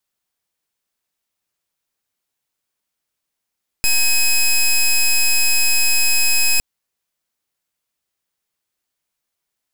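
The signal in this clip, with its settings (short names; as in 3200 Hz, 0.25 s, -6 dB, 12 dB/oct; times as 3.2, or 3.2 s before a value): pulse 2540 Hz, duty 13% -14 dBFS 2.76 s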